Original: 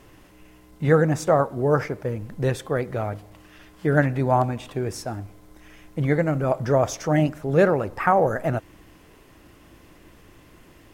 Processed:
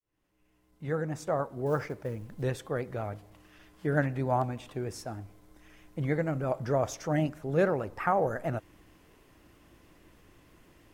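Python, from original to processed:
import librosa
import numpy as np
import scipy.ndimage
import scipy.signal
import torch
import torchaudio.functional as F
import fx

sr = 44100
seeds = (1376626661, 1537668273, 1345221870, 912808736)

y = fx.fade_in_head(x, sr, length_s=1.91)
y = fx.vibrato(y, sr, rate_hz=6.4, depth_cents=38.0)
y = fx.quant_float(y, sr, bits=4, at=(1.66, 2.43))
y = F.gain(torch.from_numpy(y), -8.0).numpy()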